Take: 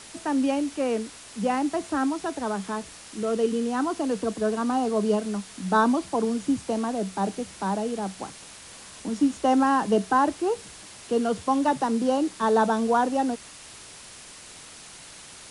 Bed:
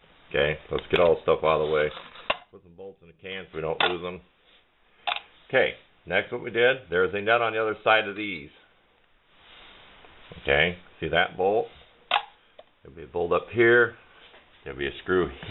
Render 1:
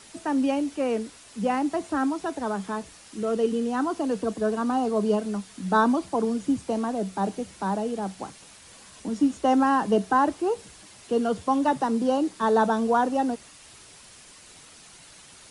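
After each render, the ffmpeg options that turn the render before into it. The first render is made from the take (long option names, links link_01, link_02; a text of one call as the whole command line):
ffmpeg -i in.wav -af "afftdn=noise_reduction=6:noise_floor=-45" out.wav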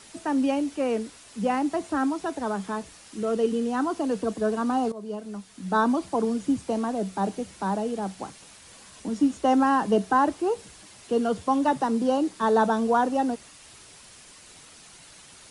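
ffmpeg -i in.wav -filter_complex "[0:a]asplit=2[link_01][link_02];[link_01]atrim=end=4.92,asetpts=PTS-STARTPTS,afade=type=out:start_time=4.916:duration=0.004:curve=hsin:silence=0.149624[link_03];[link_02]atrim=start=4.92,asetpts=PTS-STARTPTS,afade=type=in:duration=1.14:silence=0.149624[link_04];[link_03][link_04]concat=n=2:v=0:a=1" out.wav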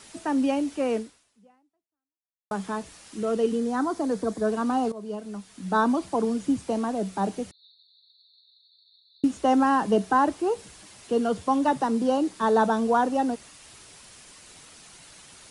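ffmpeg -i in.wav -filter_complex "[0:a]asettb=1/sr,asplit=3[link_01][link_02][link_03];[link_01]atrim=end=3.564[link_04];[link_02]atrim=start=3.56:end=4.47,asetpts=PTS-STARTPTS,afade=type=in:duration=0.004:curve=qsin,afade=type=out:start_time=0.906:duration=0.004:curve=qsin,equalizer=frequency=2800:width=5.3:gain=-11.5[link_05];[link_03]atrim=start=4.466[link_06];[link_04][link_05]acrossfade=duration=0.004:curve1=hsin:curve2=qsin[link_07];[link_07][link_06]acrossfade=duration=0.004:curve1=qsin:curve2=hsin,asettb=1/sr,asplit=3[link_08][link_09][link_10];[link_08]atrim=end=7.514[link_11];[link_09]atrim=start=7.51:end=9.24,asetpts=PTS-STARTPTS,afade=type=in:duration=0.004:curve=qsin,afade=type=out:start_time=1.726:duration=0.004:curve=qsin,asuperpass=centerf=4000:order=12:qfactor=4.5[link_12];[link_10]atrim=start=9.236[link_13];[link_11][link_12]acrossfade=duration=0.004:curve1=hsin:curve2=qsin[link_14];[link_14][link_13]acrossfade=duration=0.004:curve1=qsin:curve2=hsin,asplit=2[link_15][link_16];[link_15]atrim=end=2.51,asetpts=PTS-STARTPTS,afade=type=out:start_time=0.97:duration=1.54:curve=exp[link_17];[link_16]atrim=start=2.51,asetpts=PTS-STARTPTS,afade=type=in:duration=0.004:curve=hsin[link_18];[link_17][link_18]concat=n=2:v=0:a=1" out.wav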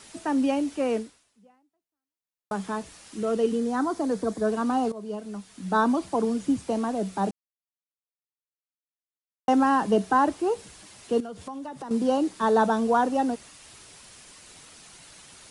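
ffmpeg -i in.wav -filter_complex "[0:a]asettb=1/sr,asplit=3[link_01][link_02][link_03];[link_01]atrim=end=11.204[link_04];[link_02]atrim=start=11.2:end=11.91,asetpts=PTS-STARTPTS,afade=type=in:duration=0.004:curve=qsin,afade=type=out:start_time=0.706:duration=0.004:curve=qsin,acompressor=threshold=-35dB:ratio=5:attack=3.2:release=140:knee=1:detection=peak[link_05];[link_03]atrim=start=11.906[link_06];[link_04][link_05]acrossfade=duration=0.004:curve1=hsin:curve2=qsin[link_07];[link_07][link_06]acrossfade=duration=0.004:curve1=qsin:curve2=hsin,asplit=3[link_08][link_09][link_10];[link_08]atrim=end=7.31,asetpts=PTS-STARTPTS,afade=type=out:start_time=7.306:duration=0.004:curve=hsin[link_11];[link_09]atrim=start=7.31:end=9.48,asetpts=PTS-STARTPTS,volume=0[link_12];[link_10]atrim=start=9.48,asetpts=PTS-STARTPTS,afade=type=in:duration=0.004:curve=hsin[link_13];[link_11][link_12][link_13]concat=n=3:v=0:a=1" out.wav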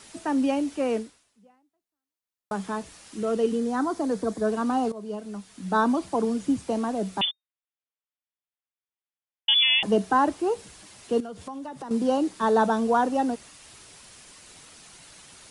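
ffmpeg -i in.wav -filter_complex "[0:a]asettb=1/sr,asplit=3[link_01][link_02][link_03];[link_01]atrim=end=7.214[link_04];[link_02]atrim=start=7.21:end=9.83,asetpts=PTS-STARTPTS,afade=type=in:duration=0.004:curve=qsin,afade=type=out:start_time=2.616:duration=0.004:curve=qsin,lowpass=frequency=3100:width_type=q:width=0.5098,lowpass=frequency=3100:width_type=q:width=0.6013,lowpass=frequency=3100:width_type=q:width=0.9,lowpass=frequency=3100:width_type=q:width=2.563,afreqshift=-3700[link_05];[link_03]atrim=start=9.826[link_06];[link_04][link_05]acrossfade=duration=0.004:curve1=hsin:curve2=qsin[link_07];[link_07][link_06]acrossfade=duration=0.004:curve1=qsin:curve2=hsin" out.wav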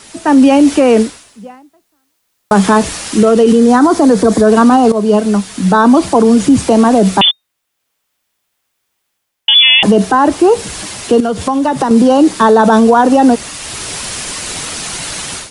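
ffmpeg -i in.wav -af "dynaudnorm=framelen=240:gausssize=3:maxgain=16dB,alimiter=level_in=11dB:limit=-1dB:release=50:level=0:latency=1" out.wav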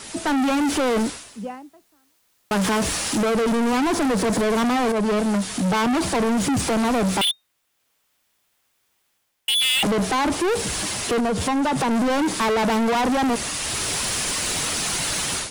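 ffmpeg -i in.wav -af "asoftclip=type=tanh:threshold=-19dB" out.wav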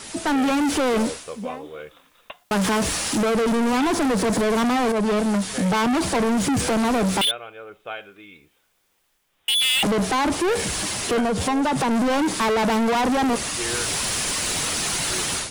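ffmpeg -i in.wav -i bed.wav -filter_complex "[1:a]volume=-13.5dB[link_01];[0:a][link_01]amix=inputs=2:normalize=0" out.wav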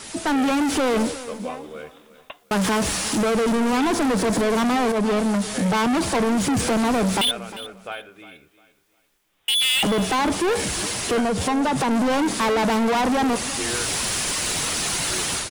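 ffmpeg -i in.wav -af "aecho=1:1:353|706|1059:0.158|0.0475|0.0143" out.wav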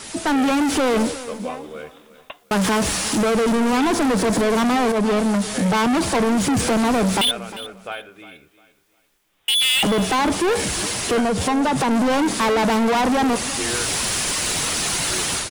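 ffmpeg -i in.wav -af "volume=2dB" out.wav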